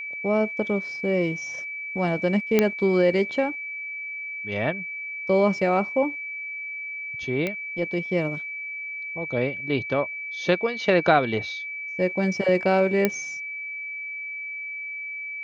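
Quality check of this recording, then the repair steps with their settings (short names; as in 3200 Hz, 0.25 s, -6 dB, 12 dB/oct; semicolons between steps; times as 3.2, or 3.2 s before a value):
tone 2300 Hz -31 dBFS
2.59 pop -5 dBFS
7.47 pop -14 dBFS
13.05 pop -7 dBFS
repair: de-click; notch 2300 Hz, Q 30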